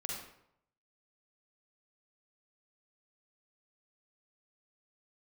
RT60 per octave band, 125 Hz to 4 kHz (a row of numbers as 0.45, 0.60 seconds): 0.85, 0.70, 0.75, 0.75, 0.60, 0.50 seconds